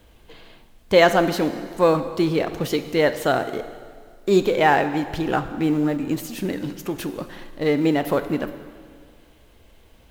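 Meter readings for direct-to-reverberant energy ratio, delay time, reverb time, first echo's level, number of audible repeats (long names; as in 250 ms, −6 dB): 10.0 dB, no echo audible, 1.9 s, no echo audible, no echo audible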